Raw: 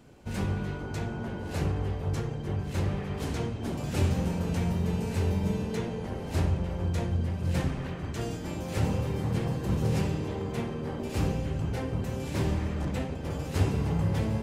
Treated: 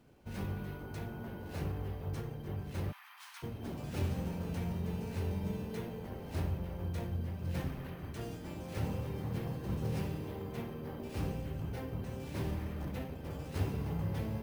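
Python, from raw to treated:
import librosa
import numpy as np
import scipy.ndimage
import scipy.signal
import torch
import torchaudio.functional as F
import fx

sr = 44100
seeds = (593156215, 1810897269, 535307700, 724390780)

y = fx.steep_highpass(x, sr, hz=940.0, slope=48, at=(2.91, 3.42), fade=0.02)
y = np.repeat(scipy.signal.resample_poly(y, 1, 3), 3)[:len(y)]
y = y * 10.0 ** (-8.5 / 20.0)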